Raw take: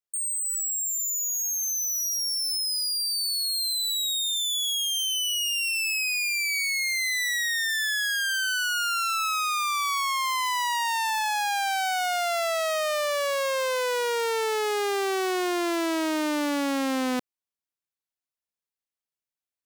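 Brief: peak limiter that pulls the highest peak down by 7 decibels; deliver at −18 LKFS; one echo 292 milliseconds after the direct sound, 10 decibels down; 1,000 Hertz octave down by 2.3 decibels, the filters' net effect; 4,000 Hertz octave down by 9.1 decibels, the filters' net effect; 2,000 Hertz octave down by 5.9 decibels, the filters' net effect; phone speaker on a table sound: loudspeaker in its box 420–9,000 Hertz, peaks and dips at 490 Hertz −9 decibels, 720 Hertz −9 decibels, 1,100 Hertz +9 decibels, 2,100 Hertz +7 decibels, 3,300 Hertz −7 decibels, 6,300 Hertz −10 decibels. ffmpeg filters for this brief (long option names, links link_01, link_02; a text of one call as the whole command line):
ffmpeg -i in.wav -af "equalizer=frequency=1000:width_type=o:gain=-3.5,equalizer=frequency=2000:width_type=o:gain=-9,equalizer=frequency=4000:width_type=o:gain=-4.5,alimiter=level_in=5dB:limit=-24dB:level=0:latency=1,volume=-5dB,highpass=frequency=420:width=0.5412,highpass=frequency=420:width=1.3066,equalizer=frequency=490:width_type=q:width=4:gain=-9,equalizer=frequency=720:width_type=q:width=4:gain=-9,equalizer=frequency=1100:width_type=q:width=4:gain=9,equalizer=frequency=2100:width_type=q:width=4:gain=7,equalizer=frequency=3300:width_type=q:width=4:gain=-7,equalizer=frequency=6300:width_type=q:width=4:gain=-10,lowpass=frequency=9000:width=0.5412,lowpass=frequency=9000:width=1.3066,aecho=1:1:292:0.316,volume=18.5dB" out.wav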